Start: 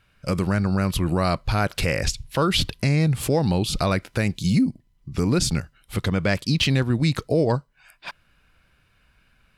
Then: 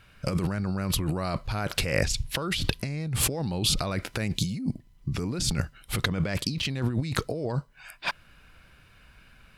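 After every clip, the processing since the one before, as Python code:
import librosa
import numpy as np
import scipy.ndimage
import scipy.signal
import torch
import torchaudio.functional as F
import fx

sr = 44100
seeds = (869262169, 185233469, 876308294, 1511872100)

y = fx.over_compress(x, sr, threshold_db=-28.0, ratio=-1.0)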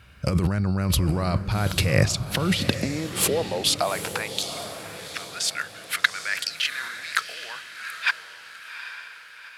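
y = fx.filter_sweep_highpass(x, sr, from_hz=65.0, to_hz=1600.0, start_s=1.46, end_s=4.71, q=2.5)
y = fx.echo_diffused(y, sr, ms=796, feedback_pct=45, wet_db=-10.0)
y = y * librosa.db_to_amplitude(3.0)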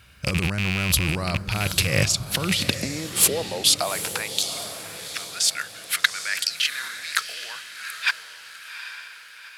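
y = fx.rattle_buzz(x, sr, strikes_db=-21.0, level_db=-14.0)
y = fx.high_shelf(y, sr, hz=2900.0, db=10.0)
y = y * librosa.db_to_amplitude(-3.0)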